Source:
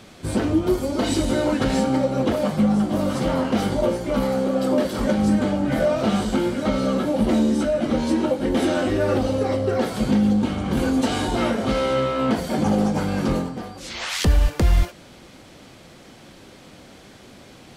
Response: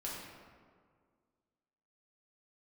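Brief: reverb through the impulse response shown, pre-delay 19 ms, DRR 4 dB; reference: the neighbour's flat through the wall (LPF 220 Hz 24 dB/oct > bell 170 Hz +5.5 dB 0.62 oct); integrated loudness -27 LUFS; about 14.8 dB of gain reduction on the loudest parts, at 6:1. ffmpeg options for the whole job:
-filter_complex "[0:a]acompressor=threshold=-29dB:ratio=6,asplit=2[a][b];[1:a]atrim=start_sample=2205,adelay=19[c];[b][c]afir=irnorm=-1:irlink=0,volume=-5dB[d];[a][d]amix=inputs=2:normalize=0,lowpass=f=220:w=0.5412,lowpass=f=220:w=1.3066,equalizer=f=170:t=o:w=0.62:g=5.5,volume=5.5dB"

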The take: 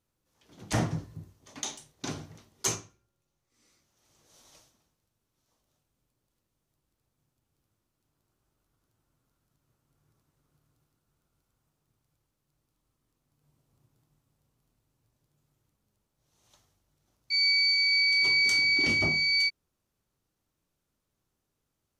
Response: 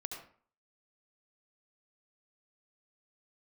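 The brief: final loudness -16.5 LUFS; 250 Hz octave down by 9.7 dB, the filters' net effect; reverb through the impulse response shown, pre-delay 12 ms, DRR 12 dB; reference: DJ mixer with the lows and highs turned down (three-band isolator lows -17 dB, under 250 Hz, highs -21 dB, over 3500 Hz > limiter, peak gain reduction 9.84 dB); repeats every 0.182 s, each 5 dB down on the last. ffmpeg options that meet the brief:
-filter_complex "[0:a]equalizer=f=250:t=o:g=-6.5,aecho=1:1:182|364|546|728|910|1092|1274:0.562|0.315|0.176|0.0988|0.0553|0.031|0.0173,asplit=2[a][b];[1:a]atrim=start_sample=2205,adelay=12[c];[b][c]afir=irnorm=-1:irlink=0,volume=-11dB[d];[a][d]amix=inputs=2:normalize=0,acrossover=split=250 3500:gain=0.141 1 0.0891[e][f][g];[e][f][g]amix=inputs=3:normalize=0,volume=20dB,alimiter=limit=-10.5dB:level=0:latency=1"

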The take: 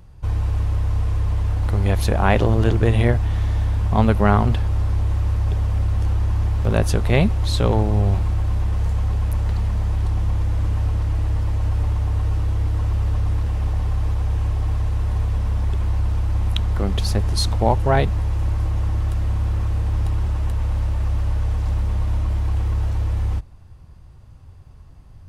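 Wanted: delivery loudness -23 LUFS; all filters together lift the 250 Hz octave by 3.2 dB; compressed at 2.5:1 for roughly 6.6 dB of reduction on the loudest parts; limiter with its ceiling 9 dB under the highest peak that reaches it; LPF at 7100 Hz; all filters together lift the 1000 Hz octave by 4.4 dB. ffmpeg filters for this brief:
-af "lowpass=7.1k,equalizer=f=250:t=o:g=4,equalizer=f=1k:t=o:g=5.5,acompressor=threshold=-19dB:ratio=2.5,volume=1.5dB,alimiter=limit=-13.5dB:level=0:latency=1"

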